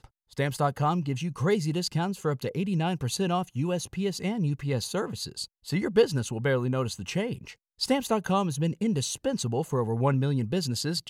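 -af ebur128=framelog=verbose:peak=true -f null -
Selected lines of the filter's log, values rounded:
Integrated loudness:
  I:         -28.3 LUFS
  Threshold: -38.4 LUFS
Loudness range:
  LRA:         1.7 LU
  Threshold: -48.5 LUFS
  LRA low:   -29.3 LUFS
  LRA high:  -27.6 LUFS
True peak:
  Peak:      -10.2 dBFS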